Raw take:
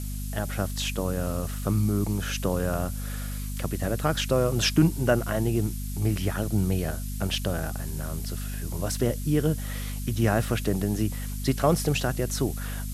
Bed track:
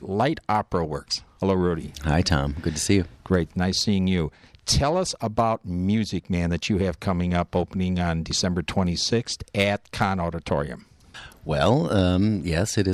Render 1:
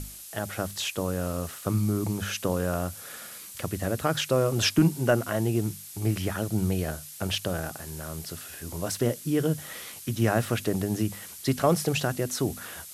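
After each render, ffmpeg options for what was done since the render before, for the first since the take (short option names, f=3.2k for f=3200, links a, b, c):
-af "bandreject=f=50:t=h:w=6,bandreject=f=100:t=h:w=6,bandreject=f=150:t=h:w=6,bandreject=f=200:t=h:w=6,bandreject=f=250:t=h:w=6"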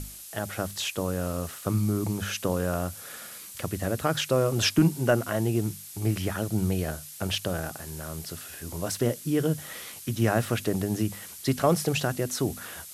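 -af anull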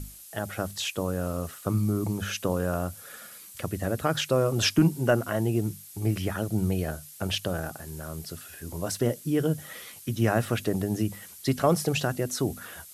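-af "afftdn=nr=6:nf=-44"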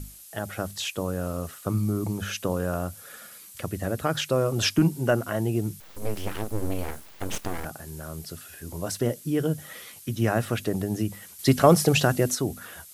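-filter_complex "[0:a]asettb=1/sr,asplit=3[a][b][c];[a]atrim=end=5.804[d];[b]atrim=start=5.8:end=7.65,asetpts=PTS-STARTPTS,afade=t=in:d=0.004:c=qsin,afade=t=out:st=1.846:d=0.004:c=qsin,aeval=exprs='abs(val(0))':c=same[e];[c]atrim=start=7.646[f];[d][e]acrossfade=d=0.004:c1=hsin:c2=qsin[g];[g][f]acrossfade=d=0.004:c1=qsin:c2=hsin,asplit=3[h][i][j];[h]atrim=end=11.392[k];[i]atrim=start=11.388:end=12.352,asetpts=PTS-STARTPTS,volume=6dB[l];[j]atrim=start=12.348[m];[k][l]acrossfade=d=0.004:c1=hsin:c2=hsin[n];[n][m]acrossfade=d=0.004:c1=hsin:c2=hsin"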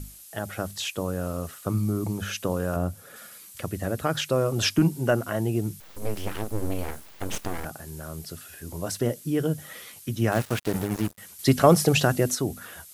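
-filter_complex "[0:a]asettb=1/sr,asplit=3[a][b][c];[a]atrim=end=2.764[d];[b]atrim=start=2.76:end=3.16,asetpts=PTS-STARTPTS,afade=t=in:d=0.004:c=qsin,afade=t=out:st=0.396:d=0.004:c=qsin,tiltshelf=f=880:g=5[e];[c]atrim=start=3.156[f];[d][e]acrossfade=d=0.004:c1=hsin:c2=qsin[g];[g][f]acrossfade=d=0.004:c1=qsin:c2=hsin,asettb=1/sr,asplit=3[h][i][j];[h]atrim=end=10.324[k];[i]atrim=start=10.32:end=11.18,asetpts=PTS-STARTPTS,afade=t=in:d=0.004:c=qsin,afade=t=out:st=0.856:d=0.004:c=qsin,acrusher=bits=4:mix=0:aa=0.5[l];[j]atrim=start=11.176[m];[k][l]acrossfade=d=0.004:c1=hsin:c2=qsin[n];[n][m]acrossfade=d=0.004:c1=qsin:c2=hsin"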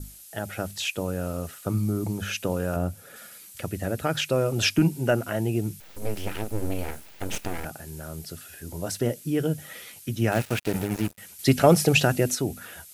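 -af "bandreject=f=1.1k:w=6.8,adynamicequalizer=threshold=0.00316:dfrequency=2500:dqfactor=4.2:tfrequency=2500:tqfactor=4.2:attack=5:release=100:ratio=0.375:range=3:mode=boostabove:tftype=bell"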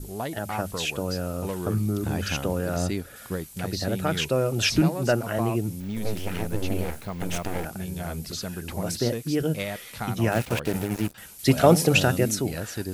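-filter_complex "[1:a]volume=-10dB[a];[0:a][a]amix=inputs=2:normalize=0"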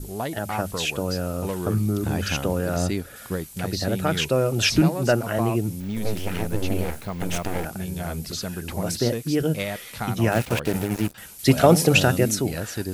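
-af "volume=2.5dB,alimiter=limit=-3dB:level=0:latency=1"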